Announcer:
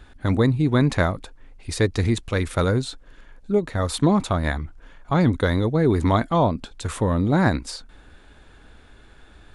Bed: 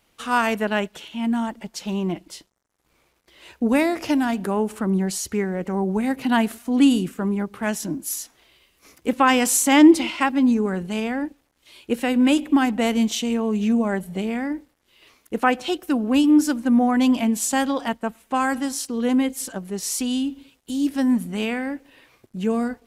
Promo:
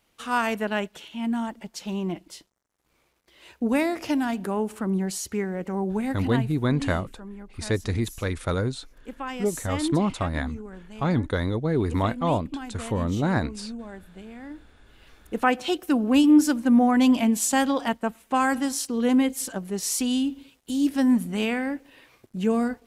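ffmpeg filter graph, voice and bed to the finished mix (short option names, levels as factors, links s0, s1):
-filter_complex "[0:a]adelay=5900,volume=0.562[s0];[1:a]volume=4.22,afade=t=out:st=6:d=0.5:silence=0.223872,afade=t=in:st=14.34:d=1.46:silence=0.149624[s1];[s0][s1]amix=inputs=2:normalize=0"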